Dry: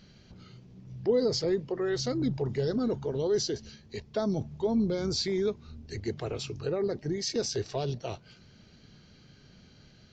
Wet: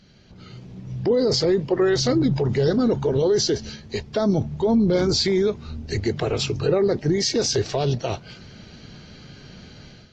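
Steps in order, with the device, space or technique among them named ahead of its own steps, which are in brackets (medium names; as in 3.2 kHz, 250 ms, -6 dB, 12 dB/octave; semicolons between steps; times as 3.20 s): 4.24–5.15 s: treble shelf 2.8 kHz -2.5 dB; low-bitrate web radio (level rider gain up to 11 dB; peak limiter -14 dBFS, peak gain reduction 8.5 dB; trim +1.5 dB; AAC 32 kbps 48 kHz)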